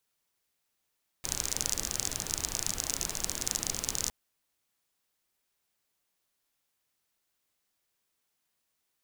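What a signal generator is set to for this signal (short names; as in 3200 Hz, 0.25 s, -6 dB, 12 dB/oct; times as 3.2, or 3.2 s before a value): rain from filtered ticks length 2.86 s, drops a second 35, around 6400 Hz, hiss -5.5 dB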